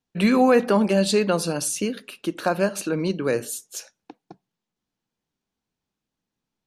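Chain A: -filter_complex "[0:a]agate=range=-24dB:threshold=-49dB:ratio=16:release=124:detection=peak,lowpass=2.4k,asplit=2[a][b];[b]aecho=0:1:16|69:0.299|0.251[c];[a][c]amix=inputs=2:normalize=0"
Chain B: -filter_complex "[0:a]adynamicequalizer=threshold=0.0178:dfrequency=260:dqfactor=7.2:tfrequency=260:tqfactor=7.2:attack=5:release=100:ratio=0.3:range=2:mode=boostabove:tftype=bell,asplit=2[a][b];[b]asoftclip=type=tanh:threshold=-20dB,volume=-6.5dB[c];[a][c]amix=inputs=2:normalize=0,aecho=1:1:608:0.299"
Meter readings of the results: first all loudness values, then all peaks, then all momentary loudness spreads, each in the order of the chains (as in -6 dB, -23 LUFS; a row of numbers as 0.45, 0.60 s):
-22.0, -19.5 LUFS; -6.0, -5.0 dBFS; 13, 15 LU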